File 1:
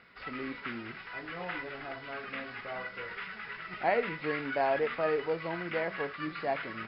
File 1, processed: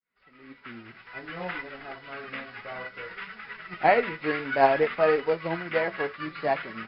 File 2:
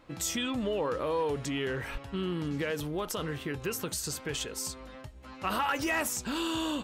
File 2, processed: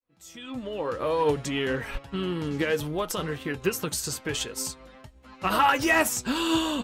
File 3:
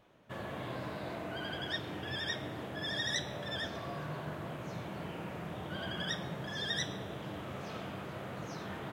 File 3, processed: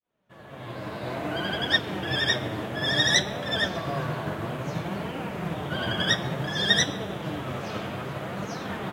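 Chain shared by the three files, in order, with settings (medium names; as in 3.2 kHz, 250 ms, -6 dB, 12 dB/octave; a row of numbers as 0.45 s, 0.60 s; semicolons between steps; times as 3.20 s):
fade-in on the opening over 1.28 s; flange 0.58 Hz, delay 3.6 ms, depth 6.1 ms, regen +55%; upward expansion 1.5:1, over -56 dBFS; normalise loudness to -27 LUFS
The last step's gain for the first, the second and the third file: +13.5 dB, +13.0 dB, +19.0 dB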